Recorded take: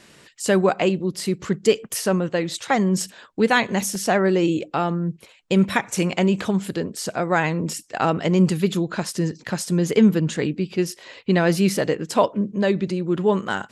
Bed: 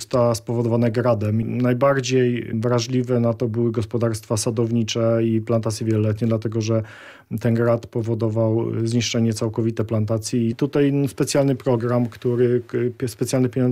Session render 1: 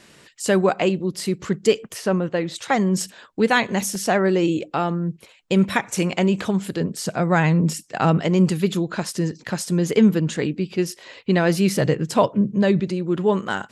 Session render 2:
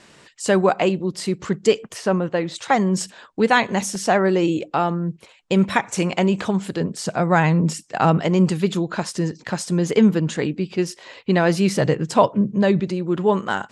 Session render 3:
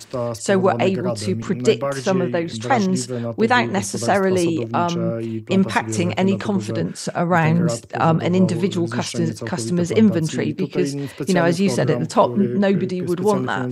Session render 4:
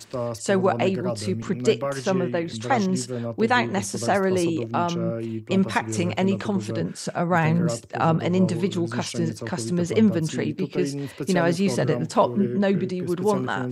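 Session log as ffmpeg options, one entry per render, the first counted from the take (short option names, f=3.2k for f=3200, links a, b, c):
-filter_complex "[0:a]asettb=1/sr,asplit=3[a][b][c];[a]atrim=end=1.924[d];[b]atrim=start=1.92:end=2.56,asetpts=PTS-STARTPTS,afade=t=in:d=0.004:c=qsin,afade=t=out:st=0.636:d=0.004:c=qsin,lowpass=f=3.1k:p=1[e];[c]atrim=start=2.556[f];[d][e]acrossfade=d=0.004:c1=hsin:c2=qsin[g];[g][f]acrossfade=d=0.004:c1=qsin:c2=hsin,asettb=1/sr,asplit=3[h][i][j];[h]atrim=end=6.804[k];[i]atrim=start=6.8:end=8.21,asetpts=PTS-STARTPTS,afade=t=in:d=0.004:c=qsin,afade=t=out:st=1.406:d=0.004:c=qsin,equalizer=f=160:t=o:w=0.77:g=8.5[l];[j]atrim=start=8.206[m];[k][l]acrossfade=d=0.004:c1=hsin:c2=qsin[n];[n][m]acrossfade=d=0.004:c1=qsin:c2=hsin,asettb=1/sr,asplit=3[o][p][q];[o]atrim=end=11.774[r];[p]atrim=start=11.77:end=12.8,asetpts=PTS-STARTPTS,afade=t=in:d=0.004:c=qsin,afade=t=out:st=1.026:d=0.004:c=qsin,equalizer=f=130:w=1.6:g=12[s];[q]atrim=start=12.796[t];[r][s]acrossfade=d=0.004:c1=hsin:c2=qsin[u];[u][t]acrossfade=d=0.004:c1=qsin:c2=hsin"
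-af "lowpass=f=9.7k:w=0.5412,lowpass=f=9.7k:w=1.3066,equalizer=f=890:w=1.3:g=4"
-filter_complex "[1:a]volume=-6.5dB[a];[0:a][a]amix=inputs=2:normalize=0"
-af "volume=-4dB"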